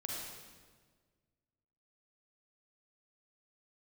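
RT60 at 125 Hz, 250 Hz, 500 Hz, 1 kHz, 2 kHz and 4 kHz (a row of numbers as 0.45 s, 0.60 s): 2.1 s, 1.9 s, 1.7 s, 1.4 s, 1.3 s, 1.2 s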